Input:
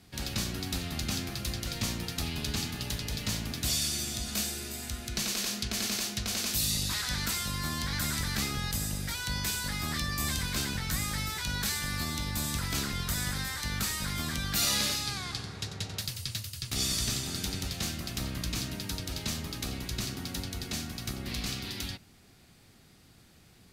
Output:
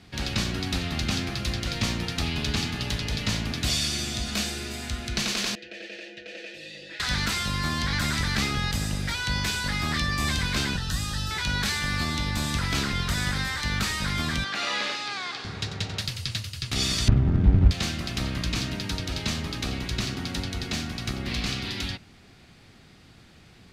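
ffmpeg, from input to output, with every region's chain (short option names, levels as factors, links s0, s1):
-filter_complex "[0:a]asettb=1/sr,asplit=3[s0][s1][s2];[s0]atrim=end=5.554[s3];[s1]atrim=start=5.55:end=7,asetpts=PTS-STARTPTS,afade=t=in:d=0.004:c=qsin,afade=t=out:st=1.446:d=0.004:c=qsin,asplit=3[s4][s5][s6];[s4]bandpass=f=530:t=q:w=8,volume=1[s7];[s5]bandpass=f=1840:t=q:w=8,volume=0.501[s8];[s6]bandpass=f=2480:t=q:w=8,volume=0.355[s9];[s7][s8][s9]amix=inputs=3:normalize=0,equalizer=f=330:t=o:w=0.37:g=9.5,aecho=1:1:6.1:0.79,atrim=end_sample=63945[s10];[s2]atrim=start=6.996[s11];[s3][s10]acrossfade=d=0.004:c1=hsin:c2=qsin[s12];[s12][s11]acrossfade=d=0.004:c1=qsin:c2=hsin,asettb=1/sr,asplit=3[s13][s14][s15];[s13]atrim=end=10.764[s16];[s14]atrim=start=10.76:end=11.31,asetpts=PTS-STARTPTS,afade=t=in:d=0.004:c=qsin,afade=t=out:st=0.546:d=0.004:c=qsin,asuperstop=centerf=2200:order=8:qfactor=5.4,acrossover=split=140|3000[s17][s18][s19];[s18]acompressor=threshold=0.00891:ratio=6:attack=3.2:release=140:knee=2.83:detection=peak[s20];[s17][s20][s19]amix=inputs=3:normalize=0[s21];[s15]atrim=start=11.306[s22];[s16][s21]acrossfade=d=0.004:c1=hsin:c2=qsin[s23];[s23][s22]acrossfade=d=0.004:c1=qsin:c2=hsin,asettb=1/sr,asplit=3[s24][s25][s26];[s24]atrim=end=14.444[s27];[s25]atrim=start=14.44:end=15.45,asetpts=PTS-STARTPTS,afade=t=in:d=0.004:c=qsin,afade=t=out:st=1.006:d=0.004:c=qsin,acrossover=split=2900[s28][s29];[s29]acompressor=threshold=0.0126:ratio=4:attack=1:release=60[s30];[s28][s30]amix=inputs=2:normalize=0,highpass=400,lowpass=7800,volume=20,asoftclip=hard,volume=0.0501[s31];[s26]atrim=start=15.446[s32];[s27][s31]acrossfade=d=0.004:c1=hsin:c2=qsin[s33];[s33][s32]acrossfade=d=0.004:c1=qsin:c2=hsin,asettb=1/sr,asplit=3[s34][s35][s36];[s34]atrim=end=17.084[s37];[s35]atrim=start=17.08:end=17.71,asetpts=PTS-STARTPTS,afade=t=in:d=0.004:c=qsin,afade=t=out:st=0.626:d=0.004:c=qsin,lowpass=1200,acrusher=bits=3:mode=log:mix=0:aa=0.000001,aemphasis=mode=reproduction:type=riaa[s38];[s36]atrim=start=17.706[s39];[s37][s38]acrossfade=d=0.004:c1=hsin:c2=qsin[s40];[s40][s39]acrossfade=d=0.004:c1=qsin:c2=hsin,lowpass=2800,aemphasis=mode=production:type=75fm,volume=2.24"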